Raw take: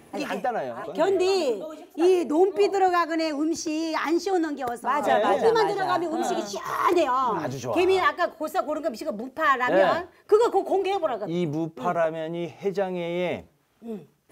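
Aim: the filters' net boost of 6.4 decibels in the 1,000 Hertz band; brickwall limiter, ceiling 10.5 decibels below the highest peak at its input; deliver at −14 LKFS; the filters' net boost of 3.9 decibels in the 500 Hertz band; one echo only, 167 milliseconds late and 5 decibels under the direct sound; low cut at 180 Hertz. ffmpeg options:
ffmpeg -i in.wav -af "highpass=180,equalizer=frequency=500:width_type=o:gain=3.5,equalizer=frequency=1000:width_type=o:gain=7,alimiter=limit=-14.5dB:level=0:latency=1,aecho=1:1:167:0.562,volume=9dB" out.wav

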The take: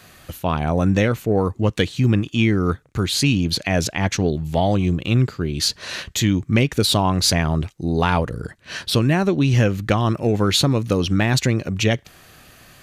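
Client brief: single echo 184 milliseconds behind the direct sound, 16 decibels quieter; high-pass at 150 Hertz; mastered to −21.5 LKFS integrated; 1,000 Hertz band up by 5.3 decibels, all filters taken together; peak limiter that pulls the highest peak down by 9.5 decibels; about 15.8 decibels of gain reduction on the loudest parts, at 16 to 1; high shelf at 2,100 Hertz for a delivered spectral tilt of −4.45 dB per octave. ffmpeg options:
ffmpeg -i in.wav -af "highpass=150,equalizer=frequency=1000:width_type=o:gain=7.5,highshelf=frequency=2100:gain=-3,acompressor=threshold=-27dB:ratio=16,alimiter=limit=-21dB:level=0:latency=1,aecho=1:1:184:0.158,volume=12dB" out.wav

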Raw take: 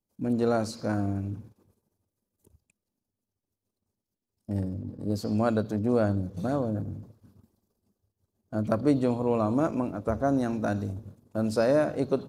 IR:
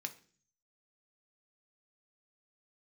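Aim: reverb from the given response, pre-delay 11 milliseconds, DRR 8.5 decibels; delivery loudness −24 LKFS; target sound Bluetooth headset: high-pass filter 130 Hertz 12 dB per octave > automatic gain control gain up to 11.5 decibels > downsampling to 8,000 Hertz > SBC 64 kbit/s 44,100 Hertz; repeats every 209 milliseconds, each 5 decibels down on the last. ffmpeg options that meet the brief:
-filter_complex "[0:a]aecho=1:1:209|418|627|836|1045|1254|1463:0.562|0.315|0.176|0.0988|0.0553|0.031|0.0173,asplit=2[link_01][link_02];[1:a]atrim=start_sample=2205,adelay=11[link_03];[link_02][link_03]afir=irnorm=-1:irlink=0,volume=-7.5dB[link_04];[link_01][link_04]amix=inputs=2:normalize=0,highpass=130,dynaudnorm=maxgain=11.5dB,aresample=8000,aresample=44100,volume=3dB" -ar 44100 -c:a sbc -b:a 64k

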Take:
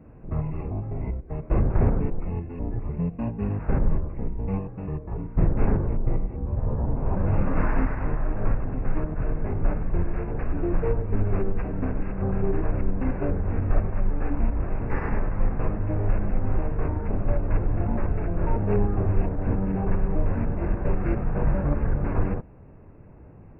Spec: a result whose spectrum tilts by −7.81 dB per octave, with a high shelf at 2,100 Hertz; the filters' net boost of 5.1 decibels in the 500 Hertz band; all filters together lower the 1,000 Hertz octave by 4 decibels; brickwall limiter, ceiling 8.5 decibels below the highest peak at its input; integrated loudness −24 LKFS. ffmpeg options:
ffmpeg -i in.wav -af "equalizer=frequency=500:width_type=o:gain=8.5,equalizer=frequency=1000:width_type=o:gain=-8,highshelf=frequency=2100:gain=-6.5,volume=4.5dB,alimiter=limit=-11.5dB:level=0:latency=1" out.wav

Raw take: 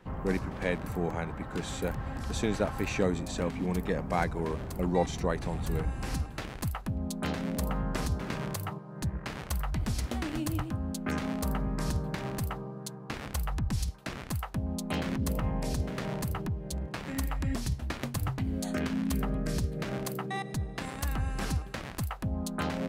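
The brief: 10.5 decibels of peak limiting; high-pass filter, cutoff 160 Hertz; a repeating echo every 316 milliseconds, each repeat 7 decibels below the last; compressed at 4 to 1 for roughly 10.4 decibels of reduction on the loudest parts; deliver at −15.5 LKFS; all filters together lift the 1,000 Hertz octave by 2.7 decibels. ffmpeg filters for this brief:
ffmpeg -i in.wav -af "highpass=160,equalizer=frequency=1000:width_type=o:gain=3.5,acompressor=threshold=-34dB:ratio=4,alimiter=level_in=5dB:limit=-24dB:level=0:latency=1,volume=-5dB,aecho=1:1:316|632|948|1264|1580:0.447|0.201|0.0905|0.0407|0.0183,volume=24dB" out.wav

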